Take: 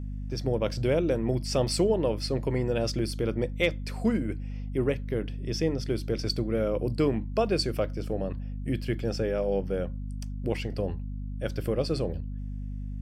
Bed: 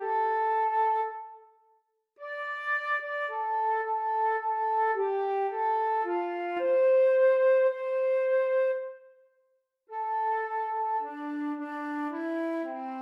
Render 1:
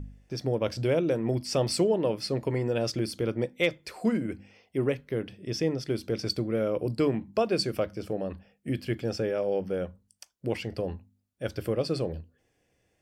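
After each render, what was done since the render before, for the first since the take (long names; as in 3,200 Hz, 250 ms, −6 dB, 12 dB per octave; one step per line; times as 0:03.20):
hum removal 50 Hz, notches 5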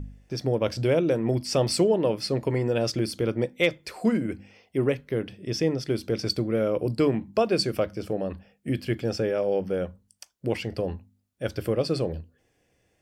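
level +3 dB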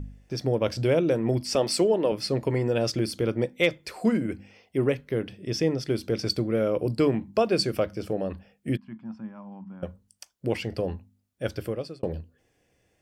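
0:01.55–0:02.12: high-pass filter 220 Hz
0:08.77–0:09.83: pair of resonant band-passes 460 Hz, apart 2.2 octaves
0:11.47–0:12.03: fade out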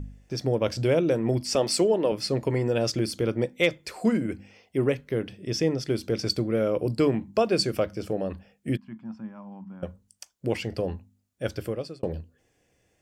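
parametric band 7,000 Hz +4 dB 0.48 octaves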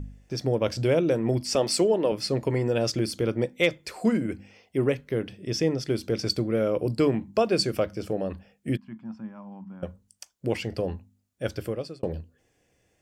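no processing that can be heard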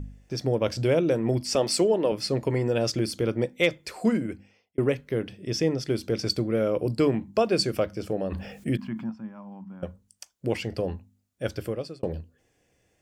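0:04.12–0:04.78: fade out
0:08.32–0:09.10: envelope flattener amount 50%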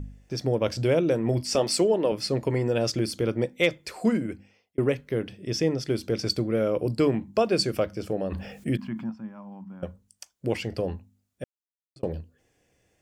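0:01.23–0:01.63: double-tracking delay 25 ms −12.5 dB
0:11.44–0:11.96: silence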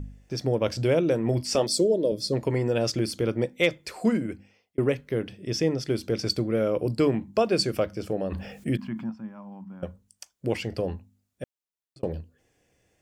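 0:01.67–0:02.33: gain on a spectral selection 660–3,200 Hz −17 dB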